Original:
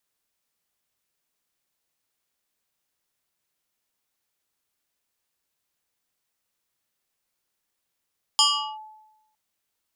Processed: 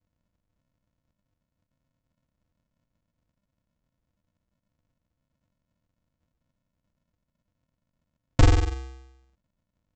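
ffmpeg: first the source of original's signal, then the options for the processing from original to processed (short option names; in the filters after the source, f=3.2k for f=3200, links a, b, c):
-f lavfi -i "aevalsrc='0.224*pow(10,-3*t/0.98)*sin(2*PI*864*t+3.3*clip(1-t/0.39,0,1)*sin(2*PI*2.34*864*t))':d=0.96:s=44100"
-af "equalizer=f=1.8k:w=0.5:g=10,aresample=16000,acrusher=samples=40:mix=1:aa=0.000001,aresample=44100"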